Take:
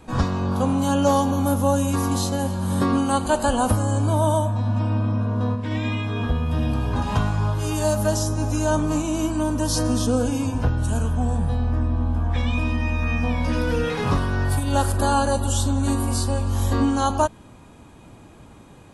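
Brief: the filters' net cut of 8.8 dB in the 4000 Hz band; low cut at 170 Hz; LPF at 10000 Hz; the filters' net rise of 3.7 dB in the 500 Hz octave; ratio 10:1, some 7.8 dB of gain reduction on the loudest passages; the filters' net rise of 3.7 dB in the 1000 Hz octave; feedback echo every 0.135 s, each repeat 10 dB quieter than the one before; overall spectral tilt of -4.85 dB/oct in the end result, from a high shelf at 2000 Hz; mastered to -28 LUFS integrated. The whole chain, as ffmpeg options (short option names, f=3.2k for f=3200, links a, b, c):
-af "highpass=170,lowpass=10k,equalizer=f=500:t=o:g=3.5,equalizer=f=1k:t=o:g=4.5,highshelf=f=2k:g=-3.5,equalizer=f=4k:t=o:g=-8.5,acompressor=threshold=-19dB:ratio=10,aecho=1:1:135|270|405|540:0.316|0.101|0.0324|0.0104,volume=-3dB"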